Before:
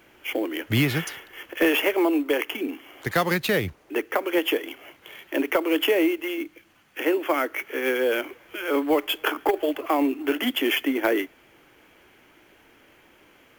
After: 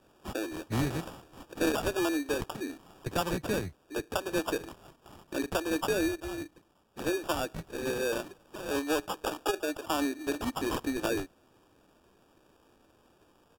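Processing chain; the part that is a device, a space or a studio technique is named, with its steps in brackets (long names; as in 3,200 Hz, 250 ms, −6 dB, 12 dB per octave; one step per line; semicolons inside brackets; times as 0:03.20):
crushed at another speed (tape speed factor 1.25×; decimation without filtering 17×; tape speed factor 0.8×)
level −8 dB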